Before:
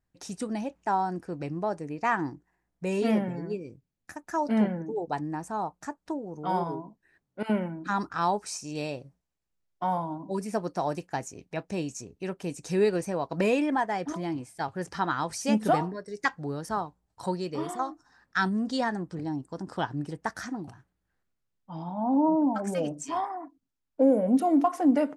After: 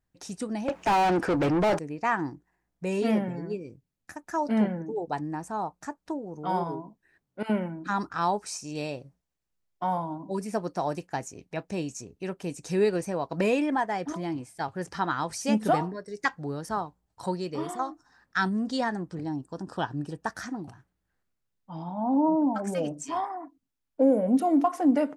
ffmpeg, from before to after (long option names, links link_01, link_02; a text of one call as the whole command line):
ffmpeg -i in.wav -filter_complex "[0:a]asettb=1/sr,asplit=3[link_01][link_02][link_03];[link_01]atrim=end=0.684[link_04];[link_02]atrim=start=0.68:end=1.79,asetpts=PTS-STARTPTS,afade=type=in:duration=0.004:curve=qsin,afade=type=out:start_time=1.106:duration=0.004:curve=qsin,asplit=2[link_05][link_06];[link_06]highpass=frequency=720:poles=1,volume=34dB,asoftclip=type=tanh:threshold=-16dB[link_07];[link_05][link_07]amix=inputs=2:normalize=0,lowpass=frequency=2000:poles=1,volume=-6dB[link_08];[link_03]atrim=start=1.786[link_09];[link_04][link_08]acrossfade=duration=0.004:curve1=hsin:curve2=qsin[link_10];[link_10][link_09]acrossfade=duration=0.004:curve1=qsin:curve2=hsin,asettb=1/sr,asplit=3[link_11][link_12][link_13];[link_11]atrim=end=19.344[link_14];[link_12]atrim=start=19.34:end=20.31,asetpts=PTS-STARTPTS,afade=type=in:duration=0.004:curve=qsin,afade=type=out:start_time=0.966:duration=0.004:curve=qsin,asuperstop=centerf=2100:order=12:qfactor=6.8[link_15];[link_13]atrim=start=20.306[link_16];[link_14][link_15]acrossfade=duration=0.004:curve1=hsin:curve2=qsin[link_17];[link_17][link_16]acrossfade=duration=0.004:curve1=qsin:curve2=hsin" out.wav